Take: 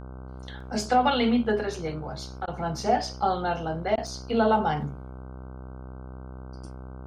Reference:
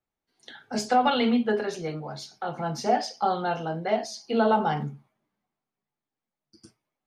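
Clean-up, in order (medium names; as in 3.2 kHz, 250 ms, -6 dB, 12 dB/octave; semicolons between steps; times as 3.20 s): de-hum 64.2 Hz, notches 24; interpolate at 0.60/4.07 s, 3.9 ms; interpolate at 2.46/3.96 s, 15 ms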